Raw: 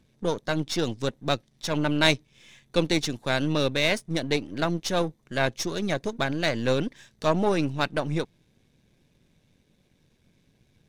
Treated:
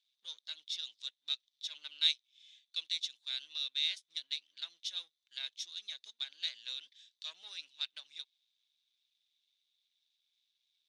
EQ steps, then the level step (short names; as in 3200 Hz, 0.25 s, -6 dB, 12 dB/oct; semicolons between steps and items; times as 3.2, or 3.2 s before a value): ladder band-pass 4000 Hz, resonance 65%; dynamic EQ 4500 Hz, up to -4 dB, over -49 dBFS, Q 4; 0.0 dB